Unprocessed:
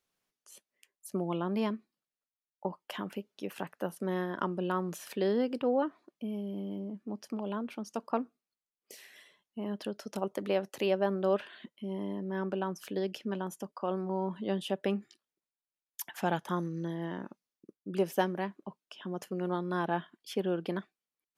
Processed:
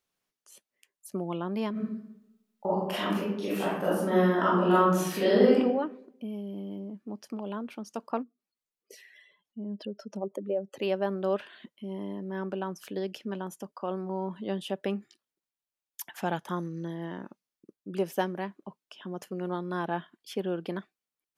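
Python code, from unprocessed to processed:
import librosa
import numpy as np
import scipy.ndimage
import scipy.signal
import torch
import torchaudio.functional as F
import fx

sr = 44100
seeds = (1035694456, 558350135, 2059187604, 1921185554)

y = fx.reverb_throw(x, sr, start_s=1.71, length_s=3.83, rt60_s=0.87, drr_db=-10.0)
y = fx.spec_expand(y, sr, power=1.9, at=(8.22, 10.81), fade=0.02)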